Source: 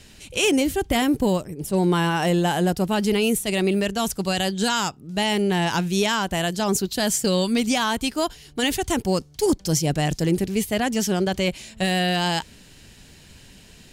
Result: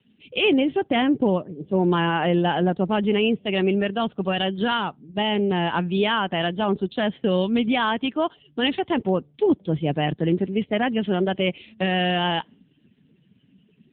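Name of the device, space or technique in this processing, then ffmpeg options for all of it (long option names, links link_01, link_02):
mobile call with aggressive noise cancelling: -filter_complex "[0:a]asettb=1/sr,asplit=3[link_01][link_02][link_03];[link_01]atrim=end=4.774[link_04];[link_02]atrim=start=4.77:end=5.74,asetpts=PTS-STARTPTS,afade=type=in:duration=0.004:curve=qsin,afade=type=out:start_time=0.966:duration=0.004:curve=qsin,equalizer=frequency=2000:width=0.77:gain=-3[link_05];[link_03]atrim=start=5.736[link_06];[link_04][link_05]acrossfade=duration=0.004:curve1=hsin:curve2=qsin[link_07];[link_07][link_06]acrossfade=duration=0.004:curve1=qsin:curve2=hsin,highpass=170,afftdn=noise_reduction=19:noise_floor=-43,volume=1.5dB" -ar 8000 -c:a libopencore_amrnb -b:a 7950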